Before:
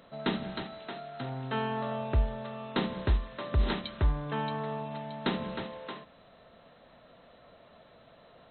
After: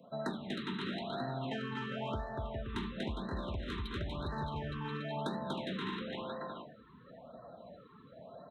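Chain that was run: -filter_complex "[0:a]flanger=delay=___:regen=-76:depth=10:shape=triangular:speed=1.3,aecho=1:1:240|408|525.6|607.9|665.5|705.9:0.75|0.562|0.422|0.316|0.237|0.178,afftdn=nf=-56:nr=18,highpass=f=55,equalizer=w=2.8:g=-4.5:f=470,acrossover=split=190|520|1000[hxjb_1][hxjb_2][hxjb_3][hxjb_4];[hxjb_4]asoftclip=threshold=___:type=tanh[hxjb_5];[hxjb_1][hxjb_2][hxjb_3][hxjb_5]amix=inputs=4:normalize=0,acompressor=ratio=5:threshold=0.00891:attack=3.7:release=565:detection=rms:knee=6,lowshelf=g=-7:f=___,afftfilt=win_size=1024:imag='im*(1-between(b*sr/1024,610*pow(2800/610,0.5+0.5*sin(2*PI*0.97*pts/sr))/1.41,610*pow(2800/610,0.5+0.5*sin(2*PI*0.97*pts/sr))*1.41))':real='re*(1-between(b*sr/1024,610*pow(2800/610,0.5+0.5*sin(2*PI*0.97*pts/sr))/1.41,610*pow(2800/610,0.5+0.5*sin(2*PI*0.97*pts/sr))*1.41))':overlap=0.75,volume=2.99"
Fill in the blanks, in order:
3.7, 0.0178, 92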